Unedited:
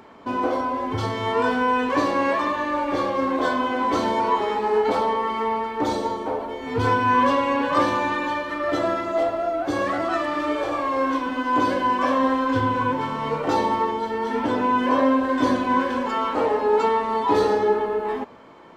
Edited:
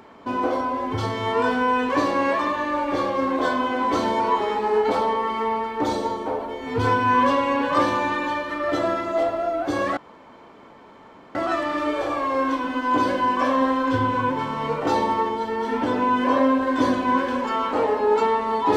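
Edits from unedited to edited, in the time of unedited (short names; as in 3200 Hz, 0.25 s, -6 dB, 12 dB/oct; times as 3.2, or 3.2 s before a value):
9.97 insert room tone 1.38 s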